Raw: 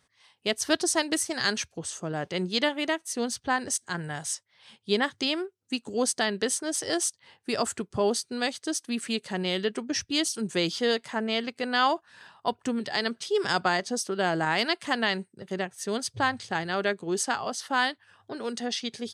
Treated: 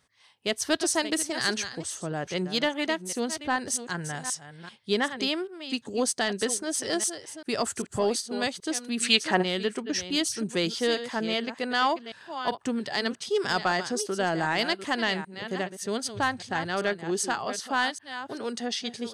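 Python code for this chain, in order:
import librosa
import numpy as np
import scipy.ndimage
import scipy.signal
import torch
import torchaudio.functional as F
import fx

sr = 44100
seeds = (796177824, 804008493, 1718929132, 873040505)

y = fx.reverse_delay(x, sr, ms=391, wet_db=-11.5)
y = 10.0 ** (-12.0 / 20.0) * np.tanh(y / 10.0 ** (-12.0 / 20.0))
y = fx.peak_eq(y, sr, hz=fx.line((8.99, 6100.0), (9.41, 790.0)), db=13.0, octaves=2.9, at=(8.99, 9.41), fade=0.02)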